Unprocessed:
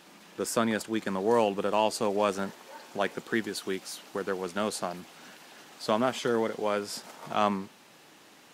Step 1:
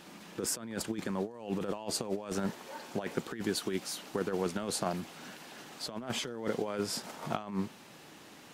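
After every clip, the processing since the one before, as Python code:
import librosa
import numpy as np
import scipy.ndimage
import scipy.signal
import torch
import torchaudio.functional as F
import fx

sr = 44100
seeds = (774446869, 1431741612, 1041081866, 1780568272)

y = fx.low_shelf(x, sr, hz=220.0, db=8.5)
y = fx.over_compress(y, sr, threshold_db=-30.0, ratio=-0.5)
y = F.gain(torch.from_numpy(y), -3.5).numpy()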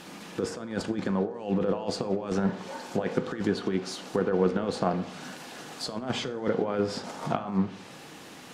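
y = fx.dynamic_eq(x, sr, hz=2400.0, q=0.94, threshold_db=-52.0, ratio=4.0, max_db=-4)
y = fx.env_lowpass_down(y, sr, base_hz=2700.0, full_db=-30.0)
y = fx.rev_fdn(y, sr, rt60_s=0.81, lf_ratio=0.95, hf_ratio=0.5, size_ms=12.0, drr_db=9.0)
y = F.gain(torch.from_numpy(y), 6.5).numpy()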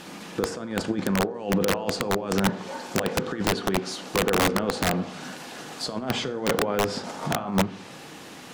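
y = (np.mod(10.0 ** (17.5 / 20.0) * x + 1.0, 2.0) - 1.0) / 10.0 ** (17.5 / 20.0)
y = F.gain(torch.from_numpy(y), 3.5).numpy()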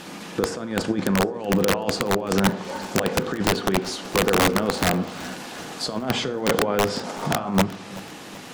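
y = fx.echo_feedback(x, sr, ms=378, feedback_pct=50, wet_db=-19.5)
y = F.gain(torch.from_numpy(y), 3.0).numpy()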